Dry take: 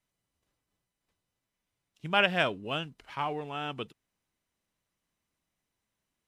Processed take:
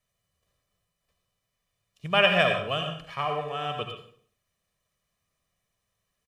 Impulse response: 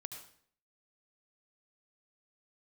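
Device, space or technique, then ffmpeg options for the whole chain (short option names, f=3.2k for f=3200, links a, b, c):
microphone above a desk: -filter_complex "[0:a]aecho=1:1:1.7:0.64[a];[1:a]atrim=start_sample=2205[b];[a][b]afir=irnorm=-1:irlink=0,volume=6.5dB"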